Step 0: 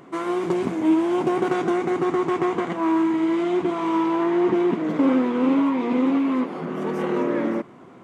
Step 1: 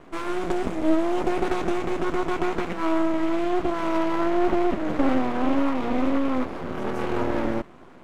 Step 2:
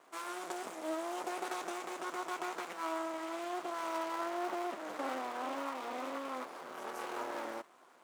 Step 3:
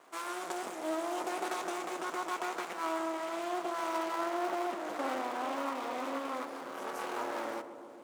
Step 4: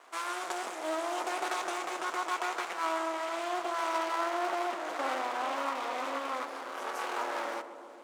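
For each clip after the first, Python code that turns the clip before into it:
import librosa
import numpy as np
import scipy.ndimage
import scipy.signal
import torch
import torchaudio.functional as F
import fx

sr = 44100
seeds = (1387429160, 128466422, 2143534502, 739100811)

y1 = scipy.signal.sosfilt(scipy.signal.butter(2, 110.0, 'highpass', fs=sr, output='sos'), x)
y1 = np.maximum(y1, 0.0)
y1 = y1 * 10.0 ** (2.0 / 20.0)
y2 = scipy.signal.sosfilt(scipy.signal.butter(2, 1200.0, 'highpass', fs=sr, output='sos'), y1)
y2 = fx.peak_eq(y2, sr, hz=2300.0, db=-15.0, octaves=2.7)
y2 = y2 * 10.0 ** (4.5 / 20.0)
y3 = fx.echo_filtered(y2, sr, ms=138, feedback_pct=84, hz=1200.0, wet_db=-10.5)
y3 = y3 * 10.0 ** (3.0 / 20.0)
y4 = fx.weighting(y3, sr, curve='A')
y4 = y4 * 10.0 ** (3.5 / 20.0)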